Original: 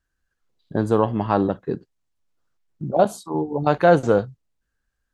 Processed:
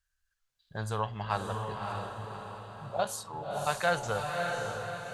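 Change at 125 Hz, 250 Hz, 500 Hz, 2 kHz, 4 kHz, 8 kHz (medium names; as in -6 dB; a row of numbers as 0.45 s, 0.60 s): -10.0 dB, -20.0 dB, -14.0 dB, -3.0 dB, +1.0 dB, +2.5 dB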